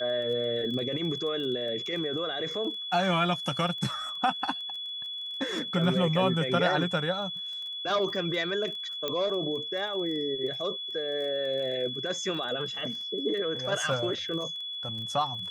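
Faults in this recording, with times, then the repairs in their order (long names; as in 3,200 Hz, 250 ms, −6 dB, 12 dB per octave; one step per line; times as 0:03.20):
surface crackle 23 per second −37 dBFS
whistle 3,400 Hz −34 dBFS
0:09.08: click −16 dBFS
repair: click removal
notch filter 3,400 Hz, Q 30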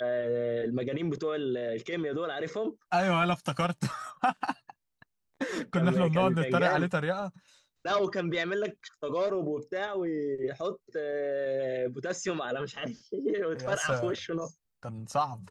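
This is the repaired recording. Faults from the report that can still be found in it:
0:09.08: click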